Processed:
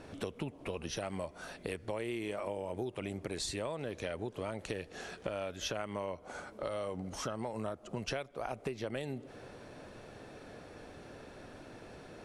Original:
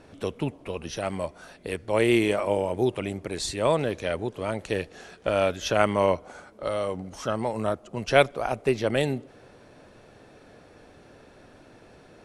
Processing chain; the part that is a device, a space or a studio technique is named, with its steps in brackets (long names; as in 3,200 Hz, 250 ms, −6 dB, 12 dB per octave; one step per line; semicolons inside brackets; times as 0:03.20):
serial compression, peaks first (downward compressor, threshold −29 dBFS, peak gain reduction 16.5 dB; downward compressor 2 to 1, threshold −40 dBFS, peak gain reduction 8.5 dB)
level +1 dB